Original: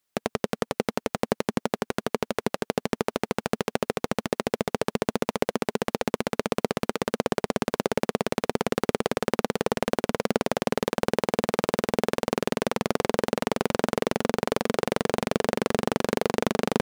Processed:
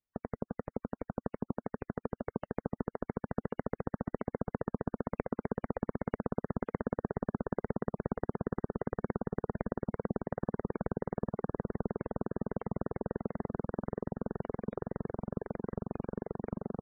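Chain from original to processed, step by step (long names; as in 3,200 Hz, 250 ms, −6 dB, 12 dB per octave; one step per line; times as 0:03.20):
source passing by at 0:07.25, 15 m/s, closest 21 metres
RIAA equalisation playback
reverb reduction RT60 1.8 s
dynamic equaliser 2,400 Hz, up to −4 dB, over −58 dBFS, Q 4
downward compressor 12 to 1, threshold −28 dBFS, peak gain reduction 14.5 dB
gate on every frequency bin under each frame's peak −25 dB strong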